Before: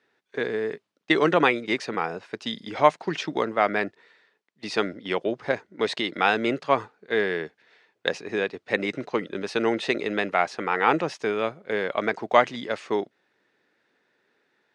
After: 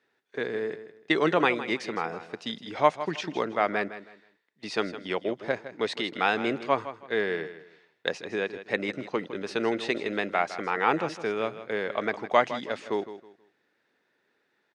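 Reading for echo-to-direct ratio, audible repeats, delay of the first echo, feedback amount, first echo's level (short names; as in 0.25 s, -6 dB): -12.5 dB, 2, 0.16 s, 27%, -13.0 dB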